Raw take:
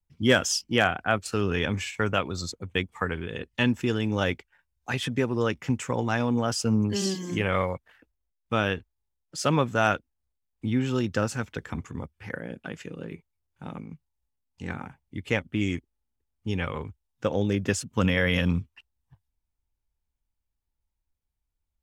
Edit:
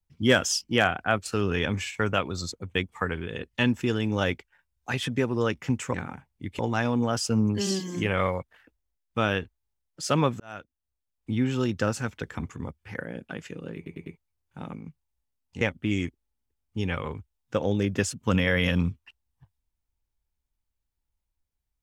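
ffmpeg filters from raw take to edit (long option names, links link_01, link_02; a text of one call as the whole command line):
ffmpeg -i in.wav -filter_complex "[0:a]asplit=8[link_01][link_02][link_03][link_04][link_05][link_06][link_07][link_08];[link_01]atrim=end=5.942[link_09];[link_02]atrim=start=14.658:end=15.312[link_10];[link_03]atrim=start=5.938:end=9.75,asetpts=PTS-STARTPTS,afade=type=out:start_time=3.808:duration=0.004:curve=hsin[link_11];[link_04]atrim=start=9.75:end=13.212,asetpts=PTS-STARTPTS,afade=type=in:duration=0.93[link_12];[link_05]atrim=start=13.108:end=13.212[link_13];[link_06]atrim=start=13.108:end=13.212[link_14];[link_07]atrim=start=13.108:end=14.662[link_15];[link_08]atrim=start=15.308[link_16];[link_09][link_10]acrossfade=duration=0.004:curve1=hsin:curve2=hsin[link_17];[link_11][link_12]concat=n=2:v=0:a=1[link_18];[link_17][link_18]acrossfade=duration=0.004:curve1=hsin:curve2=hsin[link_19];[link_19][link_13]acrossfade=duration=0.004:curve1=hsin:curve2=hsin[link_20];[link_20][link_14]acrossfade=duration=0.004:curve1=hsin:curve2=hsin[link_21];[link_21][link_15]acrossfade=duration=0.004:curve1=hsin:curve2=hsin[link_22];[link_22][link_16]acrossfade=duration=0.004:curve1=hsin:curve2=hsin" out.wav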